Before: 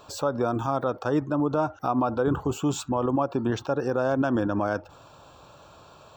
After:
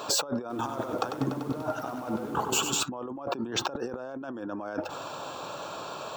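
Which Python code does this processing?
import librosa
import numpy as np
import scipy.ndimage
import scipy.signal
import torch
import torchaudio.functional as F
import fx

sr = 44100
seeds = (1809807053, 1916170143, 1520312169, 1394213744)

y = scipy.signal.sosfilt(scipy.signal.butter(2, 220.0, 'highpass', fs=sr, output='sos'), x)
y = fx.over_compress(y, sr, threshold_db=-38.0, ratio=-1.0)
y = fx.echo_crushed(y, sr, ms=97, feedback_pct=80, bits=9, wet_db=-7.5, at=(0.4, 2.83))
y = F.gain(torch.from_numpy(y), 4.0).numpy()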